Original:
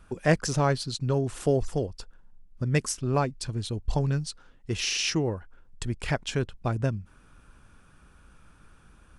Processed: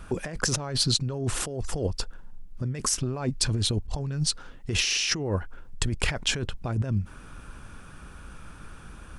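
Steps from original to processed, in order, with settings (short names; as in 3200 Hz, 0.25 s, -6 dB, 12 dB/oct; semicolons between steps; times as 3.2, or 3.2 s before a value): negative-ratio compressor -33 dBFS, ratio -1; gain +5.5 dB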